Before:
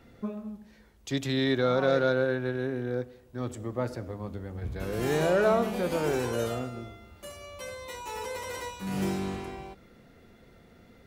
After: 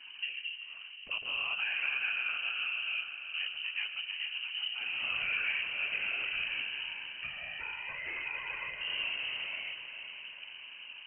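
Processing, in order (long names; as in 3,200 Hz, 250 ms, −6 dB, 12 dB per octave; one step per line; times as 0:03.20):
random phases in short frames
downward compressor 2.5 to 1, threshold −46 dBFS, peak gain reduction 17.5 dB
low-pass that shuts in the quiet parts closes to 1,200 Hz, open at −29 dBFS
feedback delay with all-pass diffusion 456 ms, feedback 55%, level −9 dB
voice inversion scrambler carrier 3,000 Hz
level +6 dB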